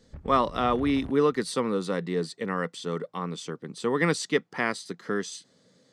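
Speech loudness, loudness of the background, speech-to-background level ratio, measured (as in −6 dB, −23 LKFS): −28.0 LKFS, −43.5 LKFS, 15.5 dB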